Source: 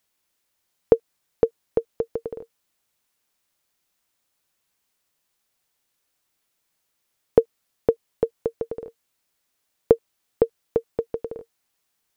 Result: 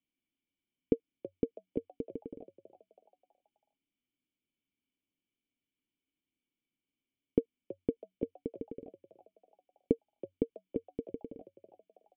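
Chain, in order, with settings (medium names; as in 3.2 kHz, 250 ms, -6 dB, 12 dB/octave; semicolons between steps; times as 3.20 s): cascade formant filter i; frequency-shifting echo 325 ms, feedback 46%, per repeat +93 Hz, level -15.5 dB; trim +2.5 dB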